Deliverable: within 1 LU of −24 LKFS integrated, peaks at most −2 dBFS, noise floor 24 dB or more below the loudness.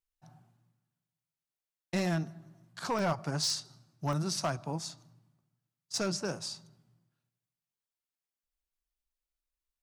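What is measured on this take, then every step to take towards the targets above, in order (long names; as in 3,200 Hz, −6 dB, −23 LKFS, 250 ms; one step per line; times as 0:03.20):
share of clipped samples 0.3%; peaks flattened at −24.0 dBFS; number of dropouts 6; longest dropout 1.3 ms; integrated loudness −34.0 LKFS; sample peak −24.0 dBFS; target loudness −24.0 LKFS
→ clipped peaks rebuilt −24 dBFS
repair the gap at 0:01.99/0:02.99/0:03.50/0:04.13/0:04.84/0:05.95, 1.3 ms
level +10 dB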